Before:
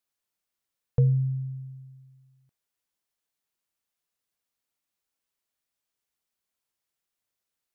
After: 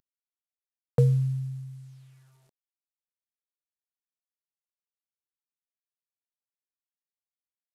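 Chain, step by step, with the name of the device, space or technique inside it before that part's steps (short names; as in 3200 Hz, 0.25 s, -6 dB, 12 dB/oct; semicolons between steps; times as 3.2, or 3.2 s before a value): early wireless headset (HPF 190 Hz 12 dB/oct; CVSD 64 kbps); gain +7.5 dB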